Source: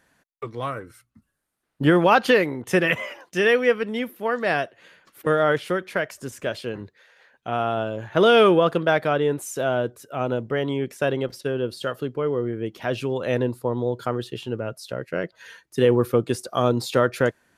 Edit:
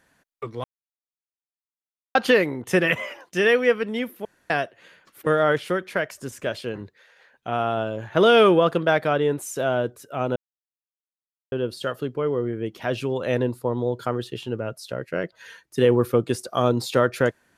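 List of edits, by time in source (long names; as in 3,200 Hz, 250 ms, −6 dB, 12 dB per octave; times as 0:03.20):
0:00.64–0:02.15: silence
0:04.25–0:04.50: fill with room tone
0:10.36–0:11.52: silence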